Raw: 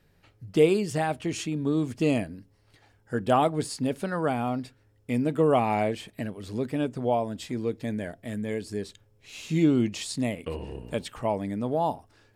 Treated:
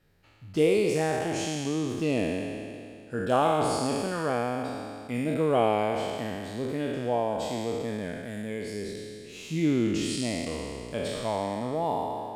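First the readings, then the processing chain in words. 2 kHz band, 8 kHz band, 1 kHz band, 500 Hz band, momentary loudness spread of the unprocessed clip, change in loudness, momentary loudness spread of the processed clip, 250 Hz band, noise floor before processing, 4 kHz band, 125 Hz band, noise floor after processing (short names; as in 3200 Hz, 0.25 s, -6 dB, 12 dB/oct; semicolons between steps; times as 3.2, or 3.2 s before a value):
+1.0 dB, +2.0 dB, 0.0 dB, 0.0 dB, 14 LU, -1.0 dB, 12 LU, -2.0 dB, -64 dBFS, +2.0 dB, -2.5 dB, -45 dBFS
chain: spectral trails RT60 2.39 s; gain -5 dB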